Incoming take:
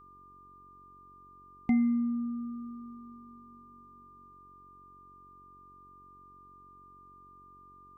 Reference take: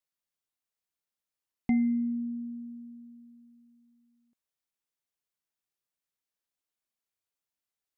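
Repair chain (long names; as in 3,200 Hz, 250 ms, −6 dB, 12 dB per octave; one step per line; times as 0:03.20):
hum removal 46.5 Hz, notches 9
notch filter 1,200 Hz, Q 30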